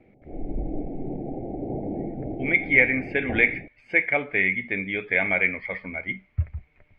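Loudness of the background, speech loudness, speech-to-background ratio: -34.0 LUFS, -23.0 LUFS, 11.0 dB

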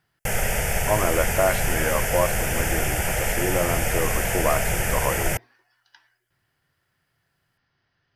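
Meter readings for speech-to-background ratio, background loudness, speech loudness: -3.0 dB, -24.5 LUFS, -27.5 LUFS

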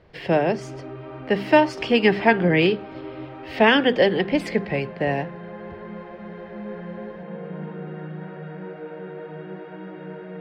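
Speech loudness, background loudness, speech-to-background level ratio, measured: -20.5 LUFS, -36.0 LUFS, 15.5 dB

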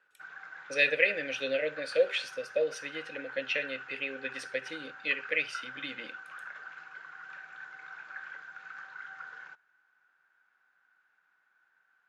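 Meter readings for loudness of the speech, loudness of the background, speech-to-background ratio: -31.5 LUFS, -45.0 LUFS, 13.5 dB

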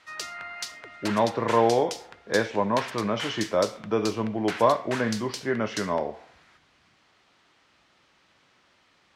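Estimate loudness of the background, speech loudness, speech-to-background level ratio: -37.0 LUFS, -26.5 LUFS, 10.5 dB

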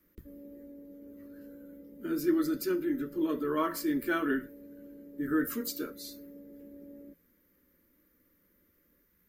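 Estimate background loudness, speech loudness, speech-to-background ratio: -50.5 LUFS, -32.0 LUFS, 18.5 dB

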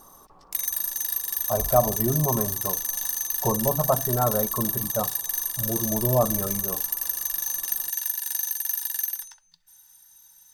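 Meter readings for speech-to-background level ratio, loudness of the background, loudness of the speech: -1.0 dB, -26.0 LUFS, -27.0 LUFS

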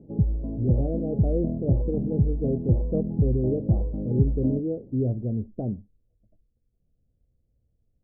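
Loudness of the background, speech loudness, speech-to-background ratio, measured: -27.0 LUFS, -29.0 LUFS, -2.0 dB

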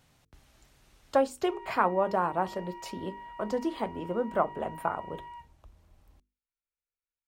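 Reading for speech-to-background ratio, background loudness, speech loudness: 15.0 dB, -46.0 LUFS, -31.0 LUFS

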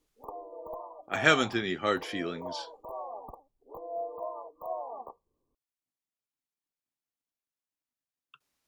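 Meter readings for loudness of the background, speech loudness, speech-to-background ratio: -41.5 LUFS, -28.0 LUFS, 13.5 dB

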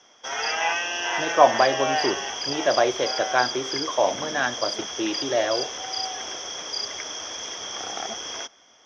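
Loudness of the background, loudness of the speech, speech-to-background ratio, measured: -28.0 LUFS, -24.5 LUFS, 3.5 dB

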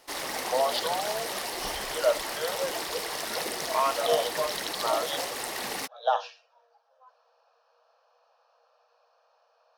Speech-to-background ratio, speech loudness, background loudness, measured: 1.0 dB, -31.0 LUFS, -32.0 LUFS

